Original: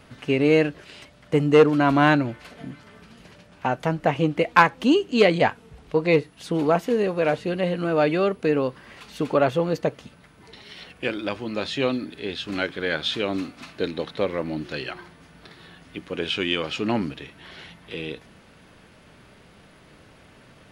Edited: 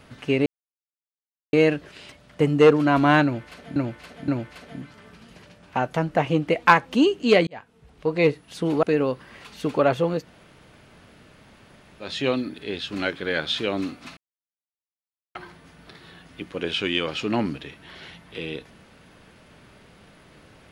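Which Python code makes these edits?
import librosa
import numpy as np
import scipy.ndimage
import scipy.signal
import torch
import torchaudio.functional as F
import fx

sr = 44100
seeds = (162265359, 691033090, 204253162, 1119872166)

y = fx.edit(x, sr, fx.insert_silence(at_s=0.46, length_s=1.07),
    fx.repeat(start_s=2.17, length_s=0.52, count=3),
    fx.fade_in_span(start_s=5.36, length_s=0.81),
    fx.cut(start_s=6.72, length_s=1.67),
    fx.room_tone_fill(start_s=9.77, length_s=1.85, crossfade_s=0.16),
    fx.silence(start_s=13.73, length_s=1.18), tone=tone)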